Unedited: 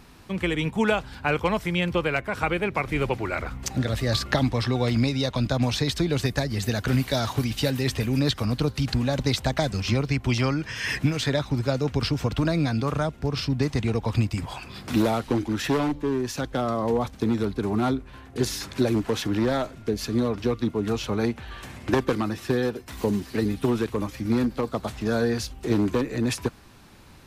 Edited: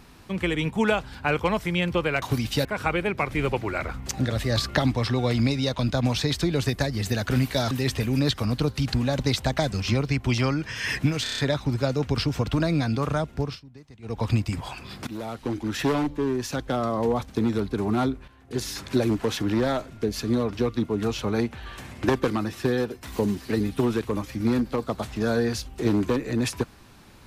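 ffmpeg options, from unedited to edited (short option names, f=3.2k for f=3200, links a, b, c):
-filter_complex "[0:a]asplit=13[a][b][c][d][e][f][g][h][i][j][k][l][m];[a]atrim=end=2.222[n];[b]atrim=start=7.278:end=7.712[o];[c]atrim=start=2.218:end=7.282[p];[d]atrim=start=7.708:end=11.262[q];[e]atrim=start=11.228:end=11.262[r];[f]atrim=start=11.228:end=11.262[s];[g]atrim=start=11.228:end=11.262[t];[h]atrim=start=11.228:end=11.262[u];[i]atrim=start=11.228:end=13.45,asetpts=PTS-STARTPTS,afade=t=out:st=2.032:d=0.19:silence=0.0707946[v];[j]atrim=start=13.45:end=13.87,asetpts=PTS-STARTPTS,volume=-23dB[w];[k]atrim=start=13.87:end=14.92,asetpts=PTS-STARTPTS,afade=t=in:d=0.19:silence=0.0707946,afade=t=out:st=1.046:d=0.004:c=hsin:silence=0.112202[x];[l]atrim=start=14.92:end=18.13,asetpts=PTS-STARTPTS,afade=t=in:d=0.79:silence=0.112202,afade=t=out:st=3.206:d=0.004:c=hsin:silence=0.211349[y];[m]atrim=start=18.13,asetpts=PTS-STARTPTS,afade=t=in:d=0.55:silence=0.211349[z];[n][o]acrossfade=d=0.004:c1=hsin:c2=hsin[aa];[aa][p]acrossfade=d=0.004:c1=hsin:c2=hsin[ab];[ab][q]acrossfade=d=0.004:c1=hsin:c2=hsin[ac];[ac][r]acrossfade=d=0.004:c1=hsin:c2=hsin[ad];[ad][s]acrossfade=d=0.004:c1=hsin:c2=hsin[ae];[ae][t]acrossfade=d=0.004:c1=hsin:c2=hsin[af];[af][u]acrossfade=d=0.004:c1=hsin:c2=hsin[ag];[v][w][x][y][z]concat=n=5:v=0:a=1[ah];[ag][ah]acrossfade=d=0.004:c1=hsin:c2=hsin"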